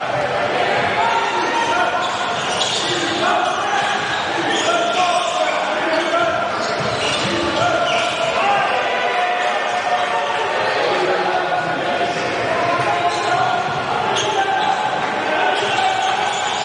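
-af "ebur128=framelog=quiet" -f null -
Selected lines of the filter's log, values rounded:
Integrated loudness:
  I:         -17.7 LUFS
  Threshold: -27.7 LUFS
Loudness range:
  LRA:         0.8 LU
  Threshold: -37.7 LUFS
  LRA low:   -18.2 LUFS
  LRA high:  -17.4 LUFS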